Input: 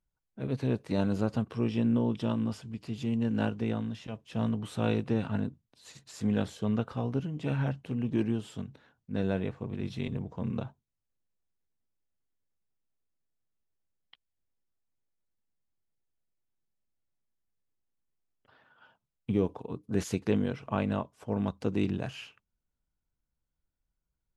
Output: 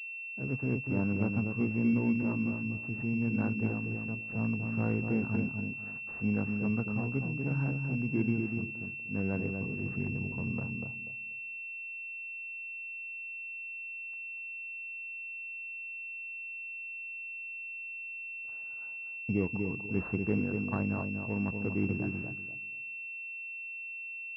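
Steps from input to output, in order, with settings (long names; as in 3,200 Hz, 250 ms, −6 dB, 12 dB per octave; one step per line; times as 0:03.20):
feedback echo with a low-pass in the loop 242 ms, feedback 23%, low-pass 840 Hz, level −4 dB
dynamic equaliser 590 Hz, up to −7 dB, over −47 dBFS, Q 1.5
switching amplifier with a slow clock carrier 2,700 Hz
level −1.5 dB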